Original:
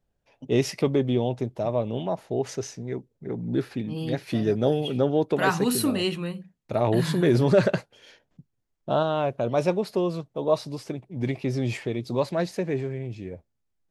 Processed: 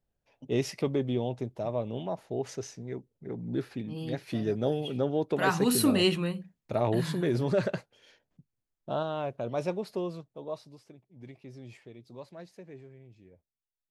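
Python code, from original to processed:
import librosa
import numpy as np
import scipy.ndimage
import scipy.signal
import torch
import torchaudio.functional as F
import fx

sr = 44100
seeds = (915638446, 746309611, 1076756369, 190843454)

y = fx.gain(x, sr, db=fx.line((5.21, -6.0), (6.05, 2.0), (7.31, -8.0), (10.03, -8.0), (10.9, -20.0)))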